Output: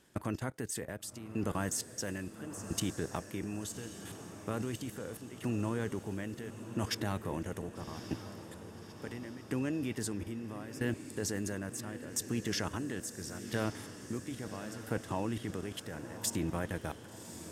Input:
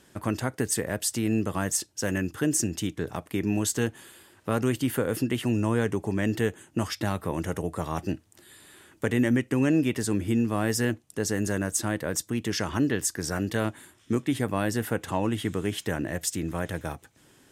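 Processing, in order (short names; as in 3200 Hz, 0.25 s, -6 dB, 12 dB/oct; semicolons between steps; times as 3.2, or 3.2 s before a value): level quantiser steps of 17 dB; tremolo saw down 0.74 Hz, depth 90%; diffused feedback echo 1.138 s, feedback 59%, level -11 dB; gain +2 dB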